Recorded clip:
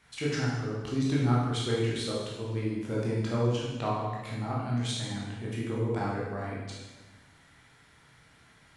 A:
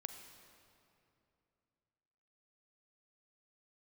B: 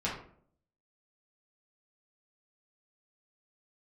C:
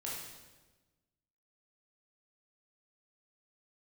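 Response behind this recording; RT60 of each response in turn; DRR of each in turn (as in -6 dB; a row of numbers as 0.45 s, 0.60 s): C; 2.8 s, 0.55 s, 1.2 s; 6.5 dB, -7.5 dB, -5.5 dB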